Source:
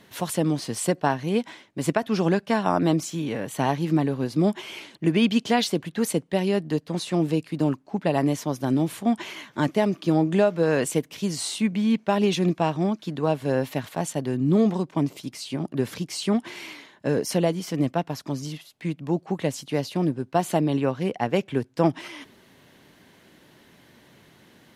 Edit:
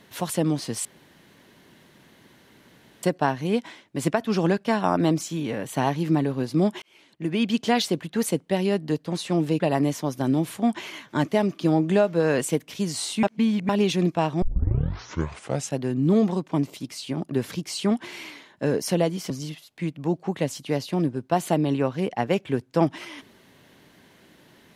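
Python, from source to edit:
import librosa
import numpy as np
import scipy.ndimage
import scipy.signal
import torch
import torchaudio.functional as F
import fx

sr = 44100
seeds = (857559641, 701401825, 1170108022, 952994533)

y = fx.edit(x, sr, fx.insert_room_tone(at_s=0.85, length_s=2.18),
    fx.fade_in_span(start_s=4.64, length_s=0.88),
    fx.cut(start_s=7.42, length_s=0.61),
    fx.reverse_span(start_s=11.66, length_s=0.46),
    fx.tape_start(start_s=12.85, length_s=1.4),
    fx.cut(start_s=17.73, length_s=0.6), tone=tone)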